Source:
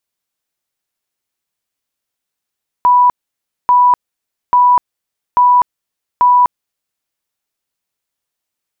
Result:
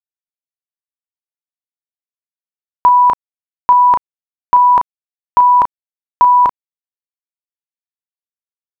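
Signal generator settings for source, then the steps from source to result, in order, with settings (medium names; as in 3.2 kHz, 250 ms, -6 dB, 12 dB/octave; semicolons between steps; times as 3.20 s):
tone bursts 985 Hz, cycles 245, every 0.84 s, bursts 5, -5.5 dBFS
doubling 35 ms -9.5 dB; in parallel at +2 dB: peak limiter -17 dBFS; on the sum: bit crusher 9-bit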